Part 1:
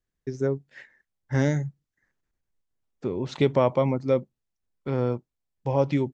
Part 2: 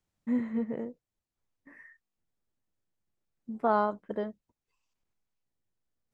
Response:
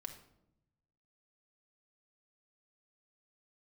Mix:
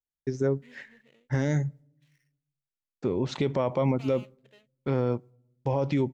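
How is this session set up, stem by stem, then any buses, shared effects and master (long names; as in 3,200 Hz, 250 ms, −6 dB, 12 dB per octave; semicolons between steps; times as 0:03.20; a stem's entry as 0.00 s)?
+1.5 dB, 0.00 s, send −20.5 dB, noise gate with hold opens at −52 dBFS
−9.5 dB, 0.35 s, no send, running median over 25 samples; high-pass filter 710 Hz 6 dB per octave; high shelf with overshoot 1,600 Hz +13.5 dB, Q 1.5; automatic ducking −11 dB, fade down 0.90 s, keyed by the first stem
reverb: on, RT60 0.80 s, pre-delay 4 ms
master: brickwall limiter −16 dBFS, peak gain reduction 9 dB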